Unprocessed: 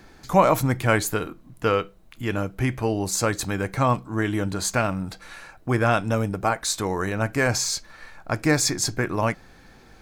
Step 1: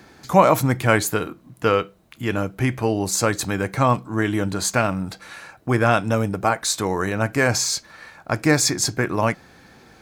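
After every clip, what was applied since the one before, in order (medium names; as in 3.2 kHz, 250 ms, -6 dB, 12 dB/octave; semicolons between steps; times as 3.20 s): high-pass 83 Hz; trim +3 dB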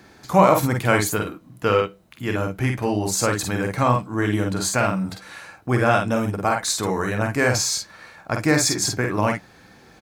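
early reflections 48 ms -4.5 dB, 58 ms -11 dB; trim -2 dB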